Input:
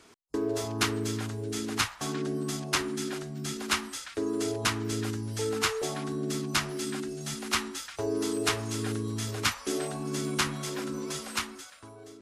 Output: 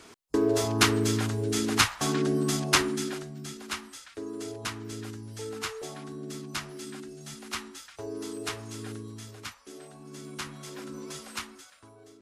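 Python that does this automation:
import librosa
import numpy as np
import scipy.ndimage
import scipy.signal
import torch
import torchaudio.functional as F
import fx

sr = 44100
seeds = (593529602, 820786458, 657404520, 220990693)

y = fx.gain(x, sr, db=fx.line((2.76, 5.5), (3.61, -7.0), (8.95, -7.0), (9.67, -15.5), (11.0, -5.0)))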